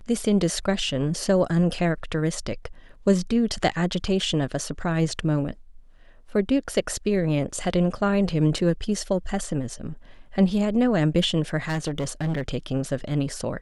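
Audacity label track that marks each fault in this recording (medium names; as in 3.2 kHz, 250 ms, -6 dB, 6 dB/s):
11.680000	12.420000	clipped -22 dBFS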